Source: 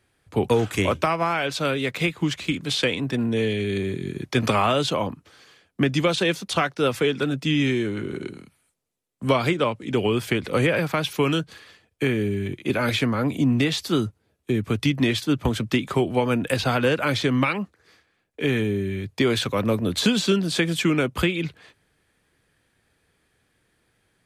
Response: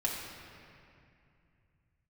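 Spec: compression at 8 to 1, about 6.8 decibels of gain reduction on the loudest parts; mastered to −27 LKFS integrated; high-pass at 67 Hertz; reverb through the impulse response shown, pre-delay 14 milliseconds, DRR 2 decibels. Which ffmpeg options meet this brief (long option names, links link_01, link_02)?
-filter_complex "[0:a]highpass=67,acompressor=threshold=-23dB:ratio=8,asplit=2[link_01][link_02];[1:a]atrim=start_sample=2205,adelay=14[link_03];[link_02][link_03]afir=irnorm=-1:irlink=0,volume=-7.5dB[link_04];[link_01][link_04]amix=inputs=2:normalize=0,volume=-0.5dB"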